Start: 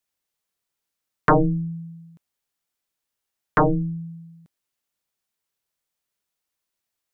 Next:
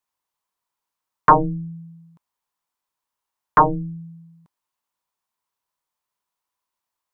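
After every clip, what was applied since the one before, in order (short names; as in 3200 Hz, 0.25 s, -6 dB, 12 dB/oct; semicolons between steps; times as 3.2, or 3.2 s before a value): bell 990 Hz +15 dB 0.62 oct; gain -3.5 dB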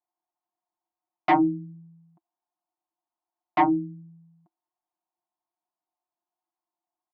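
self-modulated delay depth 0.35 ms; double band-pass 480 Hz, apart 1.1 oct; comb 5.6 ms, depth 70%; gain +5 dB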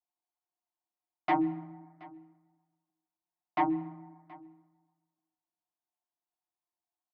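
echo 0.725 s -22.5 dB; plate-style reverb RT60 1.5 s, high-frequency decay 0.45×, pre-delay 0.115 s, DRR 18.5 dB; gain -7.5 dB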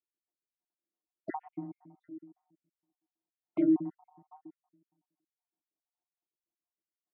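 random spectral dropouts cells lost 61%; band-pass 310 Hz, Q 1.3; gain +7 dB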